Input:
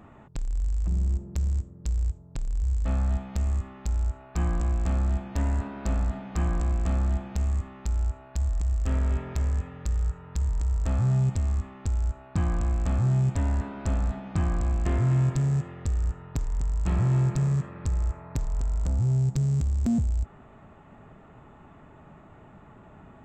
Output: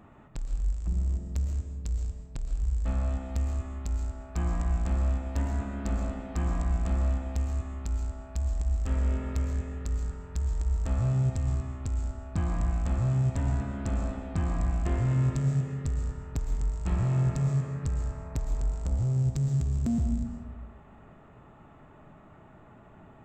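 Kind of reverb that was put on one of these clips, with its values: digital reverb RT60 1.3 s, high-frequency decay 0.6×, pre-delay 85 ms, DRR 4.5 dB; gain -3.5 dB

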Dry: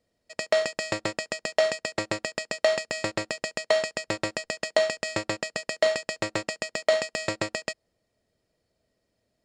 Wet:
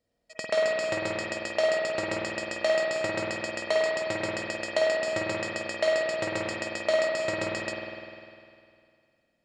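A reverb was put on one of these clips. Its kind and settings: spring tank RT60 2.3 s, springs 50 ms, chirp 40 ms, DRR -3 dB; gain -5 dB

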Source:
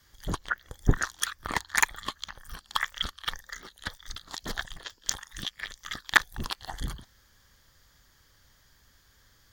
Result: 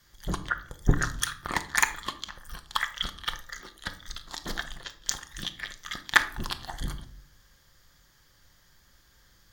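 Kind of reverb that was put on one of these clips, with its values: shoebox room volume 730 m³, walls furnished, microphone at 0.89 m

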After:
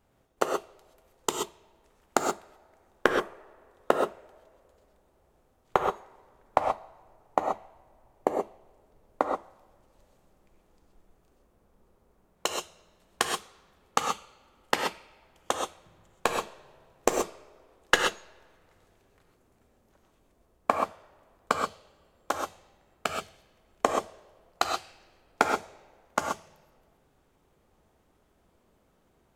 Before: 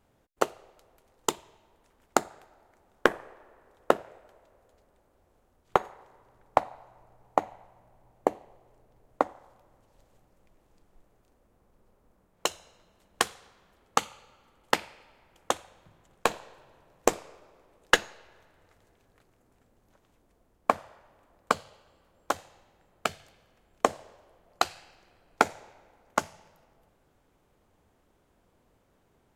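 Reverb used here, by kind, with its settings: non-linear reverb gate 0.15 s rising, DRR 2 dB; gain -1.5 dB

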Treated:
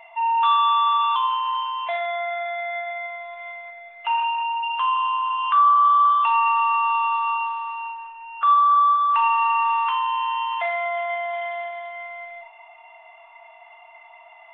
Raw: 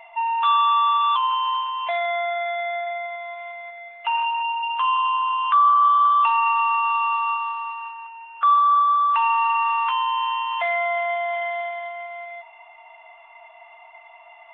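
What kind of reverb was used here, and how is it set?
Schroeder reverb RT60 0.38 s, combs from 25 ms, DRR 6 dB; gain -1.5 dB

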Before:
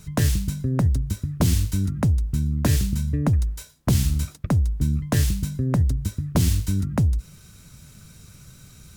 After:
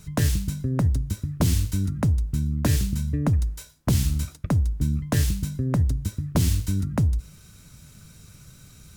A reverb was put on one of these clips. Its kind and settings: FDN reverb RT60 0.49 s, low-frequency decay 1×, high-frequency decay 0.9×, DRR 19.5 dB; gain -1.5 dB

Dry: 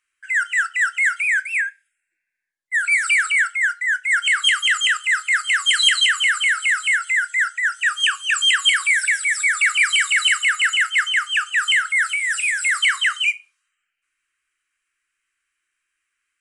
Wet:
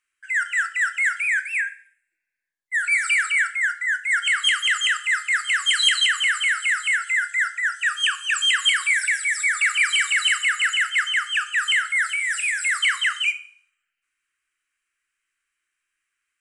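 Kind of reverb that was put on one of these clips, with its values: Schroeder reverb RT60 0.54 s, combs from 27 ms, DRR 13.5 dB; gain -3 dB

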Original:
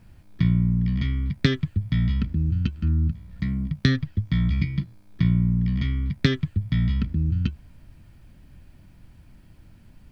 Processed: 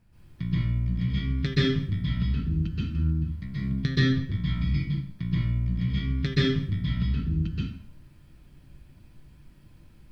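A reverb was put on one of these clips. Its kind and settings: plate-style reverb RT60 0.53 s, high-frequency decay 0.9×, pre-delay 0.115 s, DRR -9 dB; gain -11.5 dB

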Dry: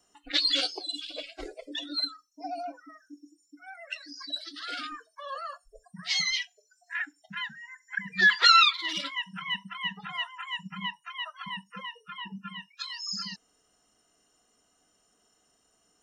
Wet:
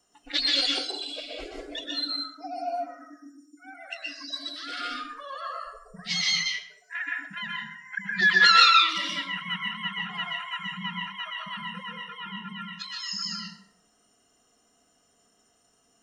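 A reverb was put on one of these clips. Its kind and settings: plate-style reverb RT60 0.63 s, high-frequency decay 0.65×, pre-delay 0.11 s, DRR -2 dB; gain -1 dB

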